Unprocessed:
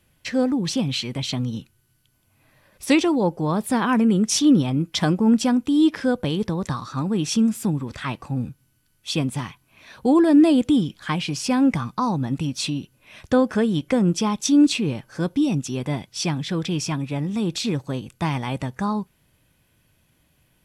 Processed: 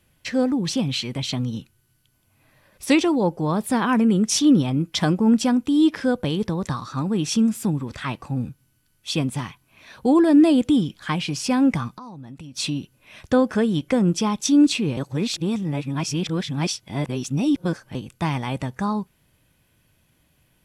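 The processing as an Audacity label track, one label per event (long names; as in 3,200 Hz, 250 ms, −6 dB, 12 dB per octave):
11.880000	12.570000	downward compressor 8 to 1, threshold −36 dBFS
14.970000	17.950000	reverse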